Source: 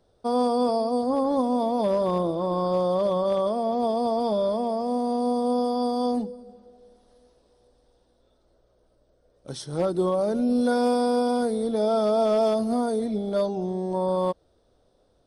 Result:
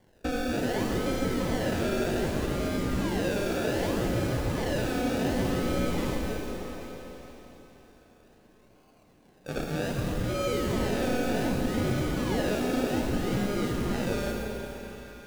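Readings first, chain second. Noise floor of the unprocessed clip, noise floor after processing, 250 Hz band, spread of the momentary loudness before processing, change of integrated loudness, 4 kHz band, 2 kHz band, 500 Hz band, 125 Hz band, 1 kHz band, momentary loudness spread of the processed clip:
−65 dBFS, −59 dBFS, −3.0 dB, 5 LU, −5.0 dB, +2.0 dB, +9.5 dB, −7.0 dB, +5.5 dB, −8.5 dB, 10 LU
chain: neighbouring bands swapped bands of 1,000 Hz
flat-topped bell 3,500 Hz +11.5 dB
downward compressor, threshold −29 dBFS, peak gain reduction 11.5 dB
sample-and-hold swept by an LFO 34×, swing 60% 0.65 Hz
echo through a band-pass that steps 162 ms, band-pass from 250 Hz, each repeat 0.7 octaves, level −3 dB
four-comb reverb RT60 3.6 s, combs from 33 ms, DRR 1.5 dB
slew-rate limiting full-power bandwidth 150 Hz

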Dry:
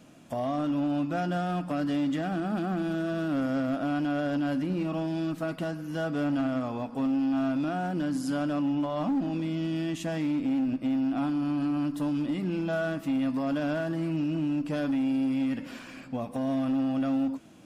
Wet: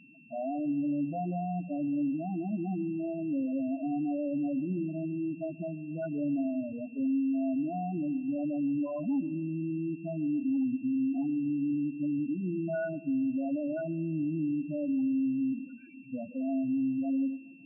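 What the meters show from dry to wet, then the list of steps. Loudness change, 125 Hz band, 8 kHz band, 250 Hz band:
−3.0 dB, −5.0 dB, can't be measured, −2.5 dB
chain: spectral peaks only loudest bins 4
steady tone 2,700 Hz −55 dBFS
delay with a low-pass on its return 138 ms, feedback 56%, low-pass 610 Hz, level −21 dB
level −2 dB

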